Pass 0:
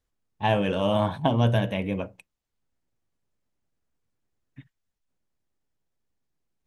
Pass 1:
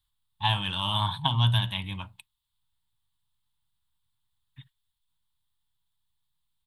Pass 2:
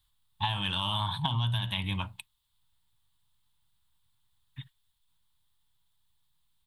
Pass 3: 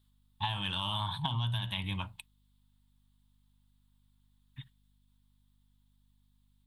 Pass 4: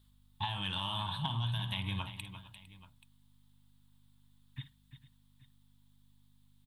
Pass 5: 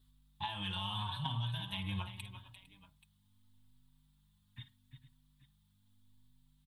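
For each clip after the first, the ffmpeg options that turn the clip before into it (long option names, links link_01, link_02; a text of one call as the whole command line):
ffmpeg -i in.wav -af "firequalizer=gain_entry='entry(130,0);entry(210,-13);entry(340,-17);entry(500,-29);entry(910,3);entry(1400,-3);entry(2400,-3);entry(3500,14);entry(5900,-9);entry(8400,6)':delay=0.05:min_phase=1" out.wav
ffmpeg -i in.wav -filter_complex "[0:a]asplit=2[link_01][link_02];[link_02]alimiter=limit=-19dB:level=0:latency=1,volume=1dB[link_03];[link_01][link_03]amix=inputs=2:normalize=0,acompressor=threshold=-25dB:ratio=12,volume=-1dB" out.wav
ffmpeg -i in.wav -af "aeval=exprs='val(0)+0.000562*(sin(2*PI*50*n/s)+sin(2*PI*2*50*n/s)/2+sin(2*PI*3*50*n/s)/3+sin(2*PI*4*50*n/s)/4+sin(2*PI*5*50*n/s)/5)':channel_layout=same,volume=-3.5dB" out.wav
ffmpeg -i in.wav -filter_complex "[0:a]acompressor=threshold=-42dB:ratio=2,asplit=2[link_01][link_02];[link_02]aecho=0:1:52|347|455|831:0.2|0.266|0.112|0.112[link_03];[link_01][link_03]amix=inputs=2:normalize=0,volume=4dB" out.wav
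ffmpeg -i in.wav -filter_complex "[0:a]asplit=2[link_01][link_02];[link_02]adelay=4.8,afreqshift=0.79[link_03];[link_01][link_03]amix=inputs=2:normalize=1" out.wav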